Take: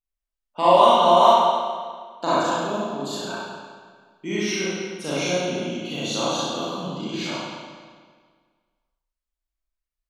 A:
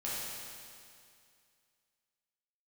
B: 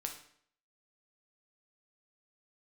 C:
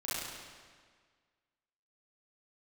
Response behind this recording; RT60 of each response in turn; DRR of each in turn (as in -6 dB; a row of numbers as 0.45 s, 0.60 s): C; 2.3 s, 0.60 s, 1.7 s; -8.5 dB, 2.5 dB, -10.0 dB